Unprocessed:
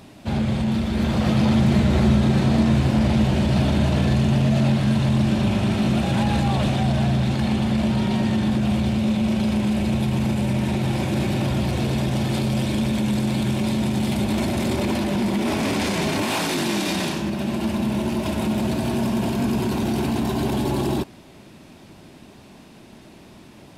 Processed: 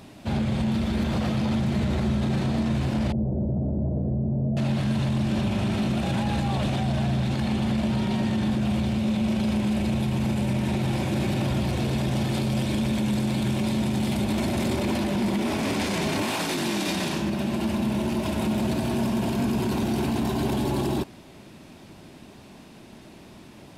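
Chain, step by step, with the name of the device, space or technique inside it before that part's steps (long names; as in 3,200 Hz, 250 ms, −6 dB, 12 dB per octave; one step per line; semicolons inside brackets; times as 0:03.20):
clipper into limiter (hard clipping −9.5 dBFS, distortion −49 dB; brickwall limiter −16.5 dBFS, peak gain reduction 7 dB)
0:03.12–0:04.57: Chebyshev low-pass filter 570 Hz, order 3
level −1 dB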